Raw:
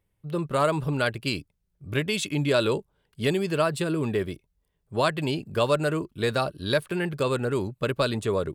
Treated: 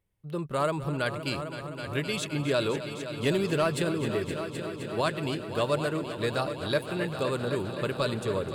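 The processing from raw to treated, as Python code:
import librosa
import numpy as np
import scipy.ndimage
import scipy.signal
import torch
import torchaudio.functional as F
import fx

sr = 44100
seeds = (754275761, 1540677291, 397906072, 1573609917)

y = fx.leveller(x, sr, passes=1, at=(3.25, 3.89))
y = fx.echo_heads(y, sr, ms=259, heads='all three', feedback_pct=70, wet_db=-14.0)
y = y * 10.0 ** (-4.5 / 20.0)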